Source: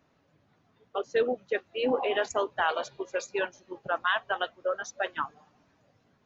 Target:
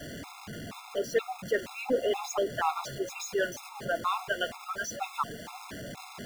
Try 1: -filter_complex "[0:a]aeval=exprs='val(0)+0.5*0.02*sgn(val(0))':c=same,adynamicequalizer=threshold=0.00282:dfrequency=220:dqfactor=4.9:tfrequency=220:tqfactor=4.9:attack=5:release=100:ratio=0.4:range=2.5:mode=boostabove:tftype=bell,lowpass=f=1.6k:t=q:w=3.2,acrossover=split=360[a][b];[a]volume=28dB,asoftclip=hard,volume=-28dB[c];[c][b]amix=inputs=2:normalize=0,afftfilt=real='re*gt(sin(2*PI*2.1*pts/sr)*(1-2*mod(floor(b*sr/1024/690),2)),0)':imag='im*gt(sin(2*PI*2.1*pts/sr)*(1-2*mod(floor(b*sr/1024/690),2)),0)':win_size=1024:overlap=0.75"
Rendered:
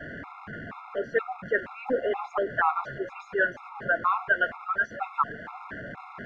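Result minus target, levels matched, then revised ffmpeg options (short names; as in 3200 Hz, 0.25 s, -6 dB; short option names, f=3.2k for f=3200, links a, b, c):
2000 Hz band +4.0 dB
-filter_complex "[0:a]aeval=exprs='val(0)+0.5*0.02*sgn(val(0))':c=same,adynamicequalizer=threshold=0.00282:dfrequency=220:dqfactor=4.9:tfrequency=220:tqfactor=4.9:attack=5:release=100:ratio=0.4:range=2.5:mode=boostabove:tftype=bell,acrossover=split=360[a][b];[a]volume=28dB,asoftclip=hard,volume=-28dB[c];[c][b]amix=inputs=2:normalize=0,afftfilt=real='re*gt(sin(2*PI*2.1*pts/sr)*(1-2*mod(floor(b*sr/1024/690),2)),0)':imag='im*gt(sin(2*PI*2.1*pts/sr)*(1-2*mod(floor(b*sr/1024/690),2)),0)':win_size=1024:overlap=0.75"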